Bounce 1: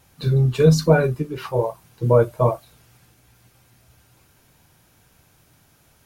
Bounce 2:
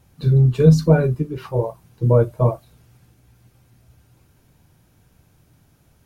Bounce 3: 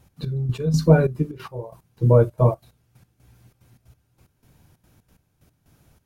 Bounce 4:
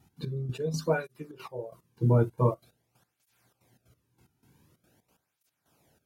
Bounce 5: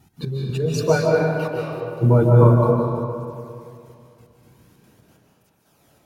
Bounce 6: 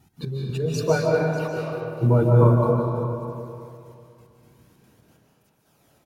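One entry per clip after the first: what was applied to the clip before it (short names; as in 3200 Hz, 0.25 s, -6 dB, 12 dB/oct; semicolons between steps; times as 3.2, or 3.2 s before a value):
low shelf 460 Hz +10.5 dB; gain -6 dB
step gate "x.x...x..xxxx.x" 183 bpm -12 dB
tape flanging out of phase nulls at 0.46 Hz, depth 1.9 ms; gain -2.5 dB
digital reverb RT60 2.5 s, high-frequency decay 0.6×, pre-delay 0.11 s, DRR -2.5 dB; gain +7.5 dB
echo 0.595 s -14.5 dB; gain -3 dB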